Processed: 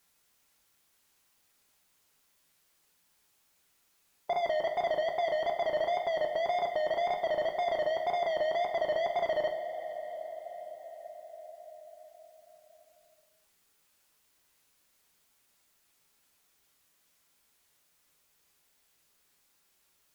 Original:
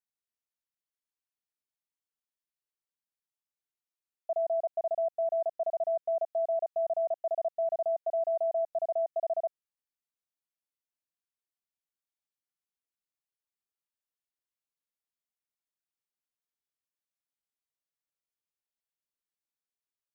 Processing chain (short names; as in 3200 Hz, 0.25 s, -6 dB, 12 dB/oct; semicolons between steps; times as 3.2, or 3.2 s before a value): wow and flutter 120 cents; in parallel at -10 dB: soft clip -33.5 dBFS, distortion -12 dB; on the sum: two-slope reverb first 0.45 s, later 5 s, from -18 dB, DRR 3.5 dB; spectral compressor 2:1; gain +1 dB